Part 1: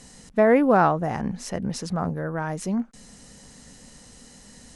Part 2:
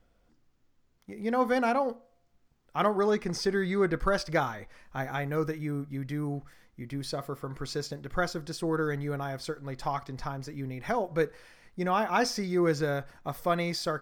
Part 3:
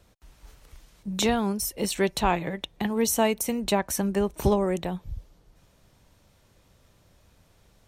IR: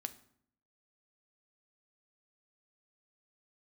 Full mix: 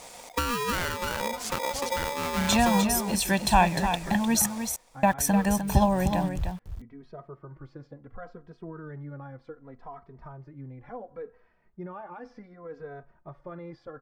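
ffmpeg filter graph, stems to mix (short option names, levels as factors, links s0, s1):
-filter_complex "[0:a]acompressor=threshold=0.0398:ratio=8,aeval=exprs='val(0)*sgn(sin(2*PI*720*n/s))':c=same,volume=1.26,asplit=2[s0][s1];[s1]volume=0.15[s2];[1:a]alimiter=limit=0.0668:level=0:latency=1,lowpass=1300,asplit=2[s3][s4];[s4]adelay=2.8,afreqshift=-0.68[s5];[s3][s5]amix=inputs=2:normalize=1,volume=0.596[s6];[2:a]aecho=1:1:1.2:0.9,aeval=exprs='val(0)*gte(abs(val(0)),0.0112)':c=same,adelay=1300,volume=1,asplit=3[s7][s8][s9];[s7]atrim=end=4.46,asetpts=PTS-STARTPTS,afade=t=out:st=4.456:d=0.004:c=hsin[s10];[s8]atrim=start=4.46:end=5.03,asetpts=PTS-STARTPTS,volume=0[s11];[s9]atrim=start=5.03,asetpts=PTS-STARTPTS,afade=t=in:d=0.004:c=hsin[s12];[s10][s11][s12]concat=n=3:v=0:a=1,asplit=2[s13][s14];[s14]volume=0.398[s15];[s2][s15]amix=inputs=2:normalize=0,aecho=0:1:303:1[s16];[s0][s6][s13][s16]amix=inputs=4:normalize=0"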